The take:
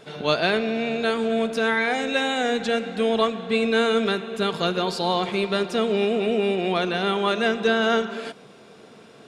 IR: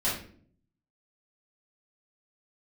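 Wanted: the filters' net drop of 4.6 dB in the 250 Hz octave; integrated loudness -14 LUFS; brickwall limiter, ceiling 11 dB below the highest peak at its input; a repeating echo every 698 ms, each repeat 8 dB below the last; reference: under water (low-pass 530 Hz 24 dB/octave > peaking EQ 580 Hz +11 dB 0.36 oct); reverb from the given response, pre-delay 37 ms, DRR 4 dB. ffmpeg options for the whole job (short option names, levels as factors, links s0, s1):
-filter_complex "[0:a]equalizer=f=250:t=o:g=-6,alimiter=limit=0.126:level=0:latency=1,aecho=1:1:698|1396|2094|2792|3490:0.398|0.159|0.0637|0.0255|0.0102,asplit=2[s0][s1];[1:a]atrim=start_sample=2205,adelay=37[s2];[s1][s2]afir=irnorm=-1:irlink=0,volume=0.211[s3];[s0][s3]amix=inputs=2:normalize=0,lowpass=f=530:w=0.5412,lowpass=f=530:w=1.3066,equalizer=f=580:t=o:w=0.36:g=11,volume=4.73"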